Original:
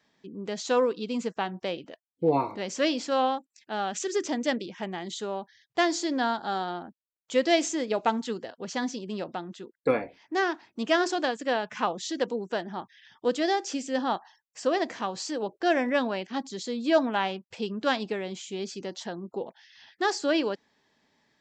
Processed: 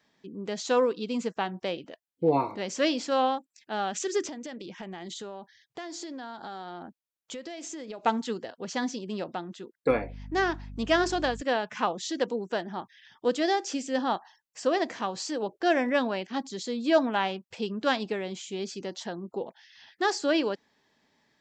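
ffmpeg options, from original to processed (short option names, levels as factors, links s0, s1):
-filter_complex "[0:a]asettb=1/sr,asplit=3[s0][s1][s2];[s0]atrim=end=4.284[s3];[s1]atrim=start=4.28:end=8.06,asetpts=PTS-STARTPTS,afade=t=in:d=0.004:c=qsin,afade=t=out:st=3.776:d=0.004:c=qsin,acompressor=threshold=0.0178:ratio=16:attack=3.2:release=140:knee=1:detection=peak[s4];[s2]atrim=start=8.056[s5];[s3][s4]acrossfade=d=0.004:c1=hsin:c2=qsin[s6];[s6][s5]acrossfade=d=0.004:c1=qsin:c2=hsin,asettb=1/sr,asplit=3[s7][s8][s9];[s7]atrim=end=9.904[s10];[s8]atrim=start=9.9:end=11.42,asetpts=PTS-STARTPTS,afade=t=in:d=0.004:c=qsin,afade=t=out:st=1.516:d=0.004:c=qsin,aeval=exprs='val(0)+0.01*(sin(2*PI*50*n/s)+sin(2*PI*2*50*n/s)/2+sin(2*PI*3*50*n/s)/3+sin(2*PI*4*50*n/s)/4+sin(2*PI*5*50*n/s)/5)':c=same[s11];[s9]atrim=start=11.416[s12];[s10][s11]acrossfade=d=0.004:c1=hsin:c2=qsin[s13];[s13][s12]acrossfade=d=0.004:c1=qsin:c2=hsin"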